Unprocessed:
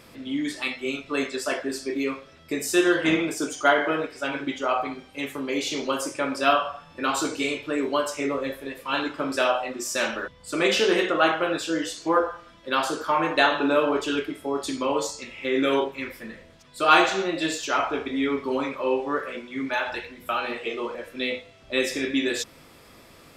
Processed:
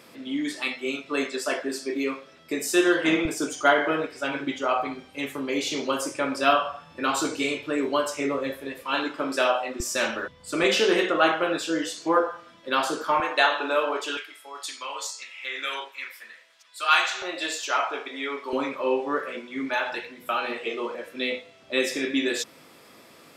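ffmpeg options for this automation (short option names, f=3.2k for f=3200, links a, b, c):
-af "asetnsamples=n=441:p=0,asendcmd='3.25 highpass f 74;8.82 highpass f 200;9.8 highpass f 64;10.64 highpass f 150;13.2 highpass f 540;14.17 highpass f 1300;17.22 highpass f 560;18.53 highpass f 180',highpass=190"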